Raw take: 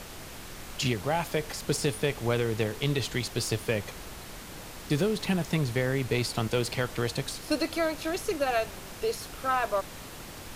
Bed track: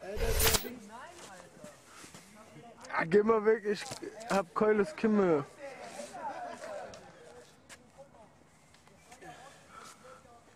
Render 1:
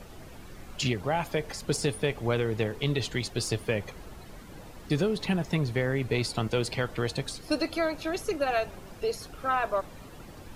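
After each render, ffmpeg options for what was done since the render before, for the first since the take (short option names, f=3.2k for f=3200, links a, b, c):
-af "afftdn=nr=11:nf=-43"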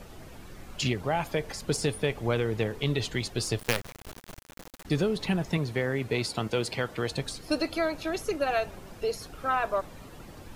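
-filter_complex "[0:a]asettb=1/sr,asplit=3[a][b][c];[a]atrim=end=3.594[d];[b]atrim=start=3.59:end=4.85,asetpts=PTS-STARTPTS,afade=t=in:d=0.004:c=qsin,afade=t=out:st=1.256:d=0.004:c=qsin,acrusher=bits=4:dc=4:mix=0:aa=0.000001[e];[c]atrim=start=4.846[f];[d][e]acrossfade=d=0.004:c1=hsin:c2=qsin[g];[g][f]acrossfade=d=0.004:c1=qsin:c2=hsin,asettb=1/sr,asplit=3[h][i][j];[h]atrim=end=5.574[k];[i]atrim=start=5.57:end=7.11,asetpts=PTS-STARTPTS,afade=t=in:d=0.004:c=qsin,afade=t=out:st=1.536:d=0.004:c=qsin,highpass=f=130:p=1[l];[j]atrim=start=7.106[m];[k][l]acrossfade=d=0.004:c1=hsin:c2=qsin[n];[n][m]acrossfade=d=0.004:c1=qsin:c2=hsin"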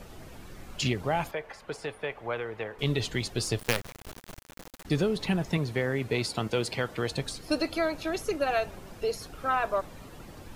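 -filter_complex "[0:a]asettb=1/sr,asplit=3[a][b][c];[a]atrim=end=1.314[d];[b]atrim=start=1.31:end=2.79,asetpts=PTS-STARTPTS,afade=t=in:d=0.004:c=qsin,afade=t=out:st=1.476:d=0.004:c=qsin,acrossover=split=510 2700:gain=0.178 1 0.141[e][f][g];[e][f][g]amix=inputs=3:normalize=0[h];[c]atrim=start=2.786[i];[d][h]acrossfade=d=0.004:c1=hsin:c2=qsin[j];[j][i]acrossfade=d=0.004:c1=qsin:c2=hsin"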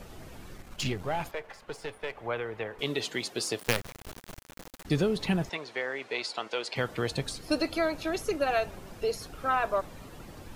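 -filter_complex "[0:a]asettb=1/sr,asplit=3[a][b][c];[a]atrim=end=0.574[d];[b]atrim=start=0.57:end=2.17,asetpts=PTS-STARTPTS,afade=t=in:d=0.004:c=qsin,afade=t=out:st=1.596:d=0.004:c=qsin,aeval=exprs='if(lt(val(0),0),0.447*val(0),val(0))':c=same[e];[c]atrim=start=2.166[f];[d][e]acrossfade=d=0.004:c1=hsin:c2=qsin[g];[g][f]acrossfade=d=0.004:c1=qsin:c2=hsin,asettb=1/sr,asplit=3[h][i][j];[h]atrim=end=2.814[k];[i]atrim=start=2.81:end=3.67,asetpts=PTS-STARTPTS,afade=t=in:d=0.004:c=qsin,afade=t=out:st=0.856:d=0.004:c=qsin,highpass=270[l];[j]atrim=start=3.666[m];[k][l]acrossfade=d=0.004:c1=hsin:c2=qsin[n];[n][m]acrossfade=d=0.004:c1=qsin:c2=hsin,asettb=1/sr,asplit=3[o][p][q];[o]atrim=end=5.494[r];[p]atrim=start=5.49:end=6.76,asetpts=PTS-STARTPTS,afade=t=in:d=0.004:c=qsin,afade=t=out:st=1.266:d=0.004:c=qsin,highpass=580,lowpass=5.9k[s];[q]atrim=start=6.756[t];[r][s]acrossfade=d=0.004:c1=hsin:c2=qsin[u];[u][t]acrossfade=d=0.004:c1=qsin:c2=hsin"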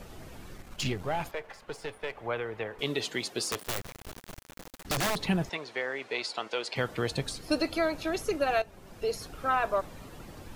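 -filter_complex "[0:a]asettb=1/sr,asplit=3[a][b][c];[a]atrim=end=3.434[d];[b]atrim=start=3.43:end=5.21,asetpts=PTS-STARTPTS,afade=t=in:d=0.004:c=qsin,afade=t=out:st=1.776:d=0.004:c=qsin,aeval=exprs='(mod(15*val(0)+1,2)-1)/15':c=same[e];[c]atrim=start=5.206[f];[d][e]acrossfade=d=0.004:c1=hsin:c2=qsin[g];[g][f]acrossfade=d=0.004:c1=qsin:c2=hsin,asplit=2[h][i];[h]atrim=end=8.62,asetpts=PTS-STARTPTS,afade=t=out:st=8.616:d=0.004:c=hsin:silence=0.211349[j];[i]atrim=start=8.62,asetpts=PTS-STARTPTS,afade=t=in:d=0.53:silence=0.211349[k];[j][k]concat=n=2:v=0:a=1"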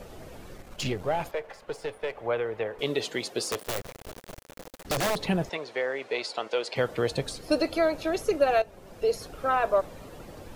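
-af "equalizer=f=530:w=1.5:g=7"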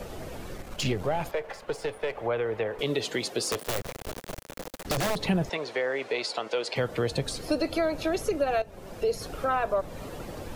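-filter_complex "[0:a]acrossover=split=230[a][b];[b]acompressor=threshold=-32dB:ratio=2[c];[a][c]amix=inputs=2:normalize=0,asplit=2[d][e];[e]alimiter=level_in=3dB:limit=-24dB:level=0:latency=1:release=122,volume=-3dB,volume=-1dB[f];[d][f]amix=inputs=2:normalize=0"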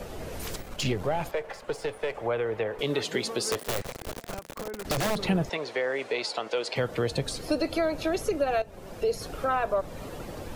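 -filter_complex "[1:a]volume=-12dB[a];[0:a][a]amix=inputs=2:normalize=0"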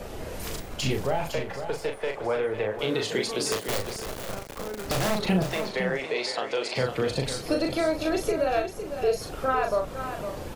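-filter_complex "[0:a]asplit=2[a][b];[b]adelay=38,volume=-4.5dB[c];[a][c]amix=inputs=2:normalize=0,aecho=1:1:508:0.355"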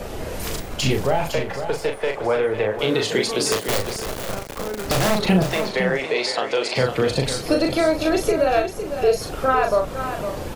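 -af "volume=6.5dB"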